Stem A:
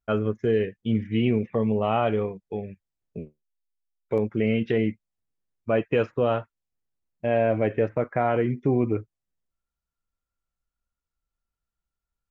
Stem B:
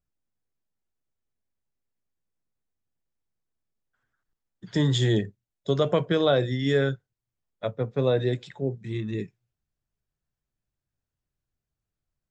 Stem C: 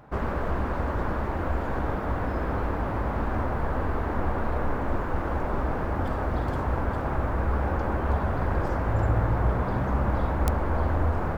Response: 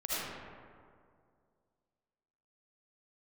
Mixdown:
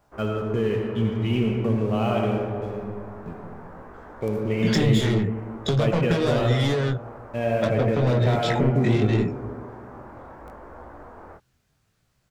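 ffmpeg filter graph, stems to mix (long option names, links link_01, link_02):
-filter_complex "[0:a]acontrast=81,aemphasis=mode=production:type=75kf,aeval=exprs='sgn(val(0))*max(abs(val(0))-0.0133,0)':channel_layout=same,adelay=100,volume=-14dB,asplit=2[link_01][link_02];[link_02]volume=-4.5dB[link_03];[1:a]bass=frequency=250:gain=5,treble=frequency=4000:gain=-1,acrossover=split=250[link_04][link_05];[link_05]acompressor=threshold=-35dB:ratio=2[link_06];[link_04][link_06]amix=inputs=2:normalize=0,asplit=2[link_07][link_08];[link_08]highpass=frequency=720:poles=1,volume=29dB,asoftclip=type=tanh:threshold=-11dB[link_09];[link_07][link_09]amix=inputs=2:normalize=0,lowpass=frequency=3900:poles=1,volume=-6dB,volume=2.5dB[link_10];[2:a]acrossover=split=310 2400:gain=0.126 1 0.178[link_11][link_12][link_13];[link_11][link_12][link_13]amix=inputs=3:normalize=0,volume=-9dB[link_14];[link_10][link_14]amix=inputs=2:normalize=0,flanger=delay=16.5:depth=7.1:speed=0.74,acompressor=threshold=-23dB:ratio=10,volume=0dB[link_15];[3:a]atrim=start_sample=2205[link_16];[link_03][link_16]afir=irnorm=-1:irlink=0[link_17];[link_01][link_15][link_17]amix=inputs=3:normalize=0,bass=frequency=250:gain=7,treble=frequency=4000:gain=3"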